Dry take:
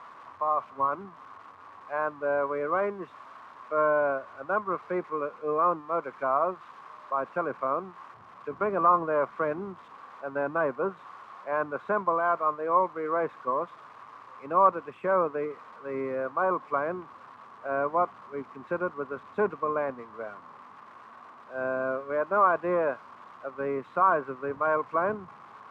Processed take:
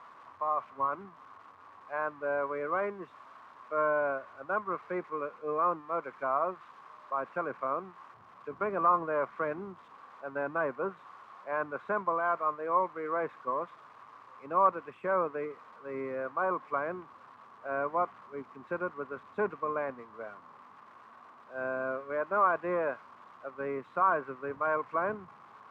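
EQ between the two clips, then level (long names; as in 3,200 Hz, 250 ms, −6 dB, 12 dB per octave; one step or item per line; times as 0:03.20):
dynamic equaliser 2,000 Hz, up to +4 dB, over −44 dBFS, Q 1.3
−5.0 dB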